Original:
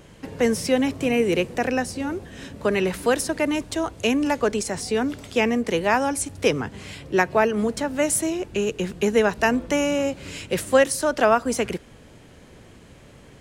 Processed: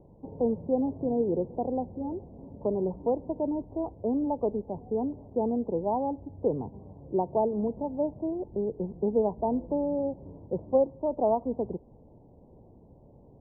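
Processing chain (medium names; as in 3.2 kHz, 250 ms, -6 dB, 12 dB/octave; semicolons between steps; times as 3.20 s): steep low-pass 940 Hz 72 dB/octave; trim -6 dB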